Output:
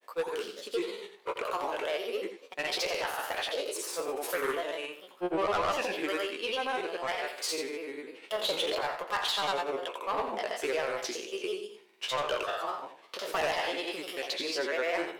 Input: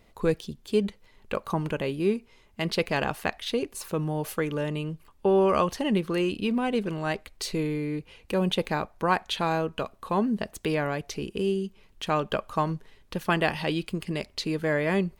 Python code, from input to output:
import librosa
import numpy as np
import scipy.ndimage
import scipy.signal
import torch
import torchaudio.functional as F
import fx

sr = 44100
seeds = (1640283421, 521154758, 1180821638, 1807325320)

p1 = fx.spec_trails(x, sr, decay_s=0.62)
p2 = scipy.signal.sosfilt(scipy.signal.butter(4, 430.0, 'highpass', fs=sr, output='sos'), p1)
p3 = 10.0 ** (-23.5 / 20.0) * np.tanh(p2 / 10.0 ** (-23.5 / 20.0))
p4 = fx.granulator(p3, sr, seeds[0], grain_ms=100.0, per_s=20.0, spray_ms=100.0, spread_st=3)
y = p4 + fx.echo_single(p4, sr, ms=86, db=-9.5, dry=0)